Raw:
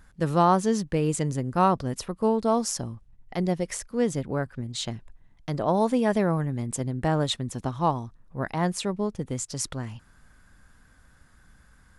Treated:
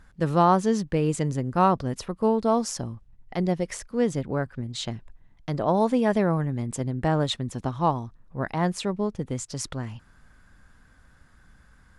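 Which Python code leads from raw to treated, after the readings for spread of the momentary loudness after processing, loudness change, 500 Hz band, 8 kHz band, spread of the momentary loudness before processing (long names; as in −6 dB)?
12 LU, +1.0 dB, +1.0 dB, −3.0 dB, 12 LU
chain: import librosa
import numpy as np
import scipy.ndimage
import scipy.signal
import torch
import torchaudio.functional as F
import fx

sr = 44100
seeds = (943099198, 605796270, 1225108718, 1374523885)

y = fx.high_shelf(x, sr, hz=8400.0, db=-10.0)
y = y * librosa.db_to_amplitude(1.0)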